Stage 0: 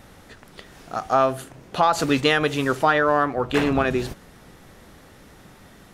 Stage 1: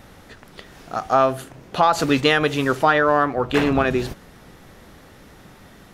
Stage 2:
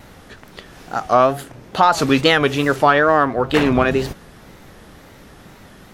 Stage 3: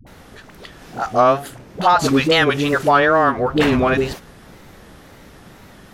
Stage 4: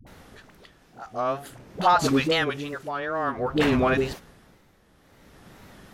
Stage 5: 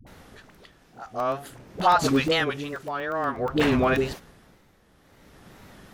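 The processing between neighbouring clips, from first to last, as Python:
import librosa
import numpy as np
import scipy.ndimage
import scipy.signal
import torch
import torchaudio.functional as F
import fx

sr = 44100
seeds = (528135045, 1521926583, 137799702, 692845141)

y1 = fx.peak_eq(x, sr, hz=8700.0, db=-3.0, octaves=0.79)
y1 = F.gain(torch.from_numpy(y1), 2.0).numpy()
y2 = fx.wow_flutter(y1, sr, seeds[0], rate_hz=2.1, depth_cents=120.0)
y2 = F.gain(torch.from_numpy(y2), 3.0).numpy()
y3 = fx.dispersion(y2, sr, late='highs', ms=67.0, hz=420.0)
y4 = y3 * (1.0 - 0.77 / 2.0 + 0.77 / 2.0 * np.cos(2.0 * np.pi * 0.52 * (np.arange(len(y3)) / sr)))
y4 = F.gain(torch.from_numpy(y4), -5.0).numpy()
y5 = fx.buffer_crackle(y4, sr, first_s=0.72, period_s=0.12, block=64, kind='zero')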